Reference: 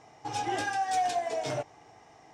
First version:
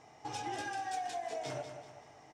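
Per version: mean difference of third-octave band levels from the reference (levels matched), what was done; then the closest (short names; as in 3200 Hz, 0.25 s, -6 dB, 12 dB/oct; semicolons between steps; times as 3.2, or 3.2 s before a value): 4.5 dB: de-hum 55.01 Hz, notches 30; compressor 4:1, threshold -35 dBFS, peak gain reduction 9.5 dB; feedback echo 0.191 s, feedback 42%, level -9 dB; gain -2.5 dB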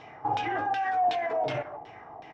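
6.5 dB: speakerphone echo 0.15 s, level -17 dB; limiter -30.5 dBFS, peak gain reduction 10.5 dB; LFO low-pass saw down 2.7 Hz 690–3400 Hz; gain +6.5 dB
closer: first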